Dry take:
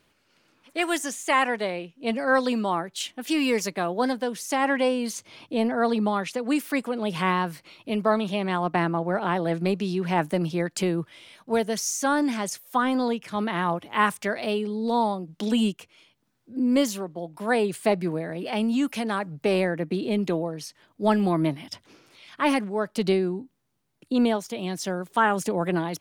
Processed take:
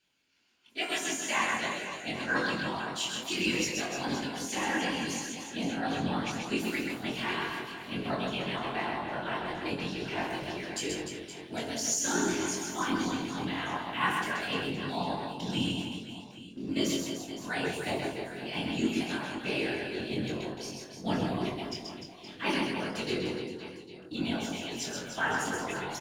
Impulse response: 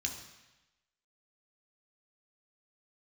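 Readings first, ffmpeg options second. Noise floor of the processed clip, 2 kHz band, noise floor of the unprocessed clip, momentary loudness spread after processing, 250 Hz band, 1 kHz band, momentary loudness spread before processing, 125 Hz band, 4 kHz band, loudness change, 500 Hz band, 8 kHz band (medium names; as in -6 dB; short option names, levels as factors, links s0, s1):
-48 dBFS, -3.0 dB, -68 dBFS, 9 LU, -8.0 dB, -8.0 dB, 8 LU, -7.0 dB, 0.0 dB, -7.0 dB, -10.0 dB, -0.5 dB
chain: -filter_complex "[0:a]lowshelf=f=130:g=-7[s0];[1:a]atrim=start_sample=2205,afade=t=out:st=0.14:d=0.01,atrim=end_sample=6615[s1];[s0][s1]afir=irnorm=-1:irlink=0,afftfilt=real='hypot(re,im)*cos(2*PI*random(0))':imag='hypot(re,im)*sin(2*PI*random(1))':win_size=512:overlap=0.75,lowshelf=f=340:g=-6.5,asplit=2[s2][s3];[s3]aeval=exprs='sgn(val(0))*max(abs(val(0))-0.002,0)':c=same,volume=0.531[s4];[s2][s4]amix=inputs=2:normalize=0,asplit=2[s5][s6];[s6]adelay=22,volume=0.668[s7];[s5][s7]amix=inputs=2:normalize=0,aecho=1:1:130|299|518.7|804.3|1176:0.631|0.398|0.251|0.158|0.1,volume=0.501"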